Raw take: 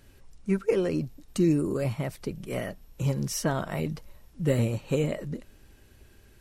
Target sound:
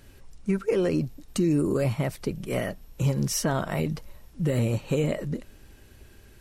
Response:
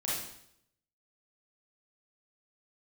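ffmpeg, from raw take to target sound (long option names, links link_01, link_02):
-af "alimiter=limit=-20dB:level=0:latency=1:release=80,volume=4dB"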